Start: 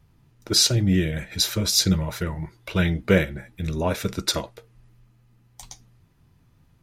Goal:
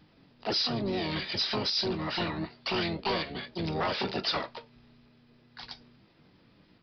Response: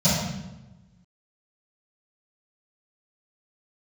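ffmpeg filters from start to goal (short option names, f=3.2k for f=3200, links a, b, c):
-filter_complex "[0:a]asplit=3[a][b][c];[b]asetrate=55563,aresample=44100,atempo=0.793701,volume=-3dB[d];[c]asetrate=88200,aresample=44100,atempo=0.5,volume=0dB[e];[a][d][e]amix=inputs=3:normalize=0,acompressor=threshold=-21dB:ratio=8,aemphasis=mode=production:type=bsi,aresample=11025,asoftclip=type=tanh:threshold=-23.5dB,aresample=44100"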